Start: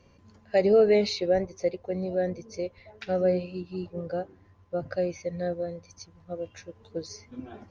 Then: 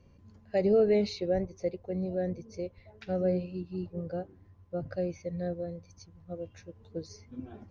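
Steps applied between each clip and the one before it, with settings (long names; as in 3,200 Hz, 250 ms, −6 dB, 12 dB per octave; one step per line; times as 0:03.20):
low-shelf EQ 330 Hz +11 dB
level −8.5 dB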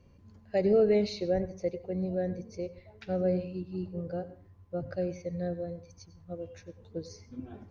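convolution reverb RT60 0.40 s, pre-delay 88 ms, DRR 15.5 dB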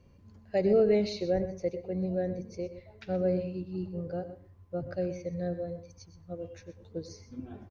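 single-tap delay 124 ms −14.5 dB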